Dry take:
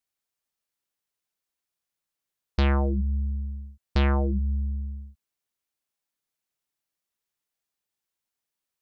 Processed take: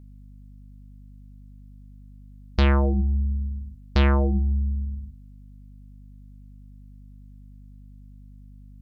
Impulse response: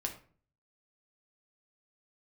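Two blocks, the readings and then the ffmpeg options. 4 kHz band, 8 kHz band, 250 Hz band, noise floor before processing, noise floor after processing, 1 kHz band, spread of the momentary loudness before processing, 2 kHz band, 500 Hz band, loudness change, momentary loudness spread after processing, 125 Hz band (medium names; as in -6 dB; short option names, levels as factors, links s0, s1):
+3.5 dB, no reading, +3.5 dB, under -85 dBFS, -46 dBFS, +2.5 dB, 13 LU, +3.5 dB, +3.5 dB, +3.0 dB, 14 LU, +3.5 dB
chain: -af "bandreject=f=84.34:t=h:w=4,bandreject=f=168.68:t=h:w=4,bandreject=f=253.02:t=h:w=4,bandreject=f=337.36:t=h:w=4,bandreject=f=421.7:t=h:w=4,bandreject=f=506.04:t=h:w=4,bandreject=f=590.38:t=h:w=4,bandreject=f=674.72:t=h:w=4,bandreject=f=759.06:t=h:w=4,bandreject=f=843.4:t=h:w=4,bandreject=f=927.74:t=h:w=4,bandreject=f=1012.08:t=h:w=4,bandreject=f=1096.42:t=h:w=4,aeval=exprs='val(0)+0.00398*(sin(2*PI*50*n/s)+sin(2*PI*2*50*n/s)/2+sin(2*PI*3*50*n/s)/3+sin(2*PI*4*50*n/s)/4+sin(2*PI*5*50*n/s)/5)':c=same,volume=1.5"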